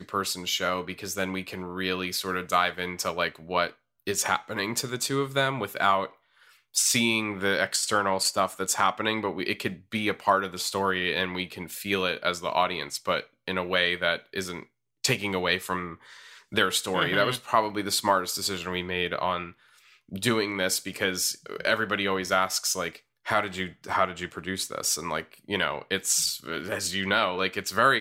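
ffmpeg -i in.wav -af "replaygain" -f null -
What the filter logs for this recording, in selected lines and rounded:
track_gain = +6.6 dB
track_peak = 0.274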